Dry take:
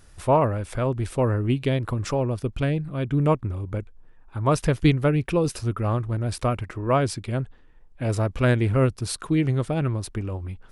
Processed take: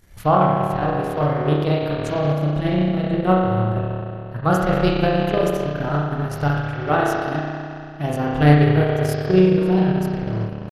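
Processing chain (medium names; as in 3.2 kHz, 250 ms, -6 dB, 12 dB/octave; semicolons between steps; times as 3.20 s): spring tank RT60 2.7 s, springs 32 ms, chirp 30 ms, DRR -6.5 dB; transient shaper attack +6 dB, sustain -10 dB; pitch shift +3 st; trim -3.5 dB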